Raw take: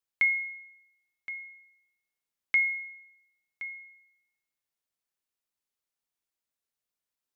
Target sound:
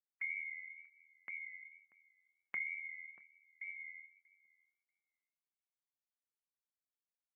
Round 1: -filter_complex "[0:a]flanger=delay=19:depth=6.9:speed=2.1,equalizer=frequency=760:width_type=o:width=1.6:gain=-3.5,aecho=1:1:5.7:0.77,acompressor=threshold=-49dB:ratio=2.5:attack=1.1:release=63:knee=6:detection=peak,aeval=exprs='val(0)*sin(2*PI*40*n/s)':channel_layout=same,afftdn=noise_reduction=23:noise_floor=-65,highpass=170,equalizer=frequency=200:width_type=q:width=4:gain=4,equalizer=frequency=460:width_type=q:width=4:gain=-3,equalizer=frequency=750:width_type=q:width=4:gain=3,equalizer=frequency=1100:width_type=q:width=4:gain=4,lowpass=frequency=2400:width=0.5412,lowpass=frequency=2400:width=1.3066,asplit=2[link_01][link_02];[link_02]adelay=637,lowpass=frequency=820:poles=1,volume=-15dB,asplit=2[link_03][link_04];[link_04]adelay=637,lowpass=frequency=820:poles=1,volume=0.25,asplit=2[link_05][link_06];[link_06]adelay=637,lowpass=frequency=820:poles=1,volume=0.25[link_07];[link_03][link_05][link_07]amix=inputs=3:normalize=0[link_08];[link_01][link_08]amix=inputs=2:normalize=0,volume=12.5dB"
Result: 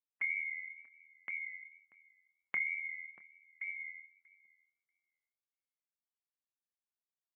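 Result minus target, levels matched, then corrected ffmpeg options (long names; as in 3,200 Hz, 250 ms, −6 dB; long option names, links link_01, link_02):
downward compressor: peak gain reduction −5 dB
-filter_complex "[0:a]flanger=delay=19:depth=6.9:speed=2.1,equalizer=frequency=760:width_type=o:width=1.6:gain=-3.5,aecho=1:1:5.7:0.77,acompressor=threshold=-57.5dB:ratio=2.5:attack=1.1:release=63:knee=6:detection=peak,aeval=exprs='val(0)*sin(2*PI*40*n/s)':channel_layout=same,afftdn=noise_reduction=23:noise_floor=-65,highpass=170,equalizer=frequency=200:width_type=q:width=4:gain=4,equalizer=frequency=460:width_type=q:width=4:gain=-3,equalizer=frequency=750:width_type=q:width=4:gain=3,equalizer=frequency=1100:width_type=q:width=4:gain=4,lowpass=frequency=2400:width=0.5412,lowpass=frequency=2400:width=1.3066,asplit=2[link_01][link_02];[link_02]adelay=637,lowpass=frequency=820:poles=1,volume=-15dB,asplit=2[link_03][link_04];[link_04]adelay=637,lowpass=frequency=820:poles=1,volume=0.25,asplit=2[link_05][link_06];[link_06]adelay=637,lowpass=frequency=820:poles=1,volume=0.25[link_07];[link_03][link_05][link_07]amix=inputs=3:normalize=0[link_08];[link_01][link_08]amix=inputs=2:normalize=0,volume=12.5dB"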